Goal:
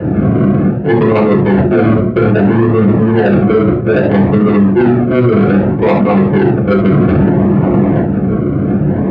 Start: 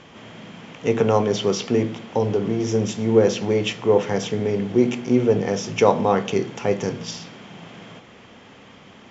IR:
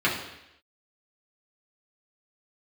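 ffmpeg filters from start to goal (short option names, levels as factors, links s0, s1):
-filter_complex "[0:a]areverse,acompressor=threshold=0.0251:ratio=16,areverse,acrusher=samples=39:mix=1:aa=0.000001:lfo=1:lforange=23.4:lforate=0.62,asplit=2[s0][s1];[s1]aeval=exprs='(mod(119*val(0)+1,2)-1)/119':c=same,volume=0.562[s2];[s0][s2]amix=inputs=2:normalize=0,adynamicsmooth=sensitivity=1:basefreq=520[s3];[1:a]atrim=start_sample=2205,afade=t=out:st=0.13:d=0.01,atrim=end_sample=6174[s4];[s3][s4]afir=irnorm=-1:irlink=0,alimiter=level_in=10.6:limit=0.891:release=50:level=0:latency=1,volume=0.891"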